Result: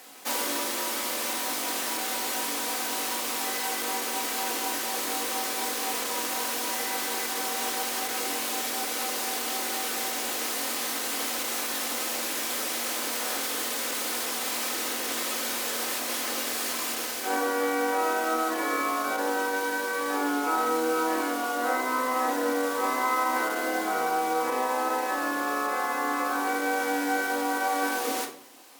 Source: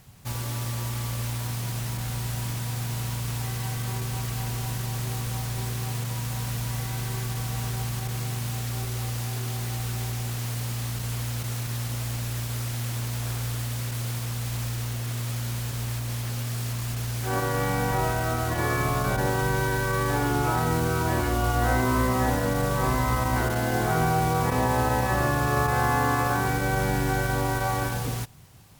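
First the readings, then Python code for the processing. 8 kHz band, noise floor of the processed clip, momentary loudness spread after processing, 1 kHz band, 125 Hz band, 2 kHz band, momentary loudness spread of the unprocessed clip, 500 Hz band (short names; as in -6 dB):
+5.0 dB, -31 dBFS, 2 LU, +0.5 dB, under -30 dB, +1.5 dB, 7 LU, 0.0 dB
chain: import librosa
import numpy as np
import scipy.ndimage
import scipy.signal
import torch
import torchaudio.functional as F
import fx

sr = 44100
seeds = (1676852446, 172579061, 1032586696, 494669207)

y = scipy.signal.sosfilt(scipy.signal.butter(6, 290.0, 'highpass', fs=sr, output='sos'), x)
y = fx.rider(y, sr, range_db=10, speed_s=0.5)
y = fx.room_shoebox(y, sr, seeds[0], volume_m3=750.0, walls='furnished', distance_m=2.0)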